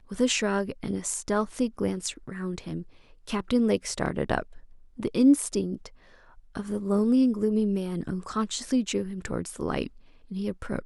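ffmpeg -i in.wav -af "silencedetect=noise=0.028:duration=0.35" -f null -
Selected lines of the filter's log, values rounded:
silence_start: 2.80
silence_end: 3.27 | silence_duration: 0.47
silence_start: 4.42
silence_end: 5.00 | silence_duration: 0.57
silence_start: 5.86
silence_end: 6.55 | silence_duration: 0.70
silence_start: 9.87
silence_end: 10.32 | silence_duration: 0.45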